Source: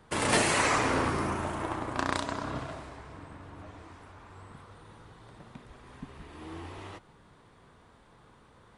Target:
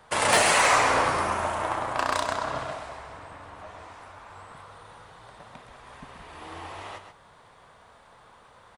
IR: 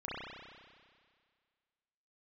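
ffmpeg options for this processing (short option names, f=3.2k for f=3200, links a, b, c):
-af "lowshelf=f=450:t=q:w=1.5:g=-8.5,asoftclip=type=hard:threshold=-19dB,aecho=1:1:130:0.376,volume=5.5dB"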